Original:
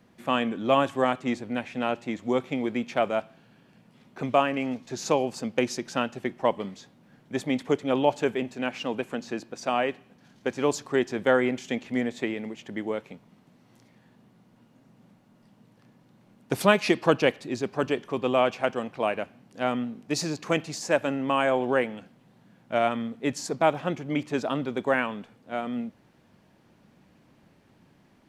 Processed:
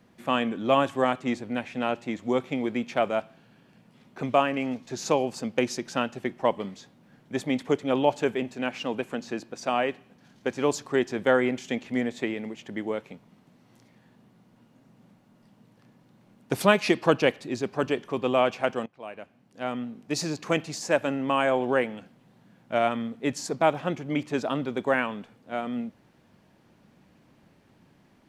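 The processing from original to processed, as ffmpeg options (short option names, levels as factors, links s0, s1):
-filter_complex "[0:a]asplit=2[s0][s1];[s0]atrim=end=18.86,asetpts=PTS-STARTPTS,afade=t=out:st=18.856:d=0.004:c=hsin:silence=0.0841395[s2];[s1]atrim=start=18.86,asetpts=PTS-STARTPTS,afade=t=in:d=1.45:silence=0.0841395[s3];[s2][s3]concat=n=2:v=0:a=1"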